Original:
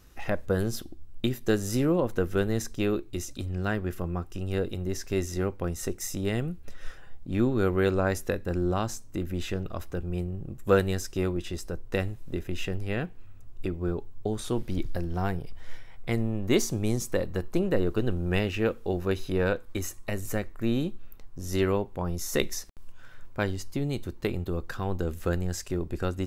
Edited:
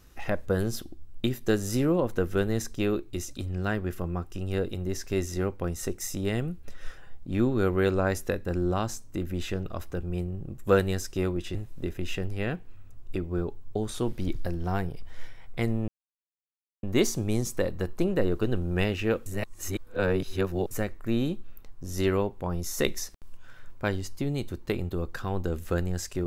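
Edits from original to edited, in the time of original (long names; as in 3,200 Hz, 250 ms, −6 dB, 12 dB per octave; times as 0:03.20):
0:11.55–0:12.05: remove
0:16.38: splice in silence 0.95 s
0:18.81–0:20.26: reverse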